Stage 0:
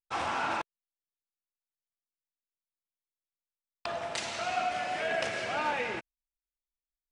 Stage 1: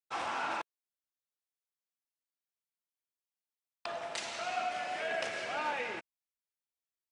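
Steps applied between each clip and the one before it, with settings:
high-pass filter 270 Hz 6 dB per octave
level −3.5 dB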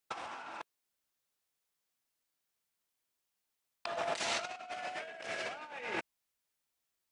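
compressor whose output falls as the input rises −42 dBFS, ratio −0.5
level +3 dB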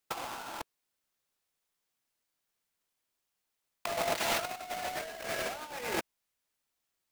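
each half-wave held at its own peak

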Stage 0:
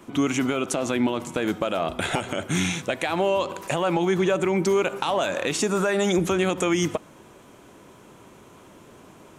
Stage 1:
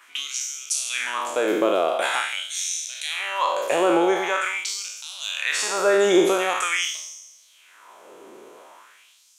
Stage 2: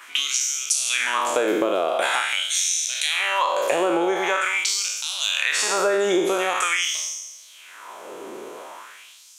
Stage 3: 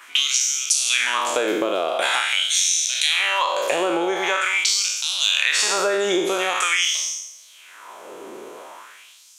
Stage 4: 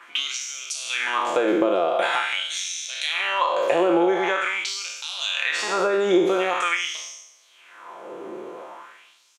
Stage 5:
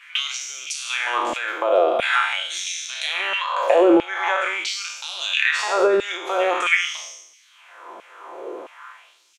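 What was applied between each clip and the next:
peak hold with a decay on every bin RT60 1.19 s; auto-filter high-pass sine 0.45 Hz 370–5,700 Hz; level −1.5 dB
downward compressor 6 to 1, threshold −27 dBFS, peak gain reduction 13.5 dB; level +8.5 dB
dynamic equaliser 4,000 Hz, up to +6 dB, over −36 dBFS, Q 0.72; level −1 dB
low-pass filter 1,200 Hz 6 dB per octave; comb filter 5.8 ms, depth 37%; level +2 dB
auto-filter high-pass saw down 1.5 Hz 230–2,600 Hz

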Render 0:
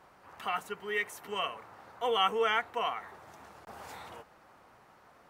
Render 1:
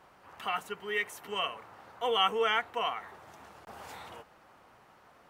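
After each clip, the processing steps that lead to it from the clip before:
parametric band 3,000 Hz +3 dB 0.48 octaves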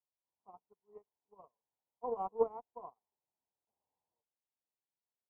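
harmonic generator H 7 −21 dB, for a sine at −14.5 dBFS
elliptic low-pass filter 1,000 Hz, stop band 40 dB
expander for the loud parts 2.5 to 1, over −53 dBFS
level +2.5 dB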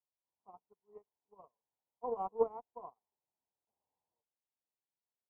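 no processing that can be heard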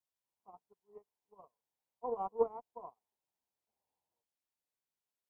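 pitch vibrato 0.97 Hz 19 cents

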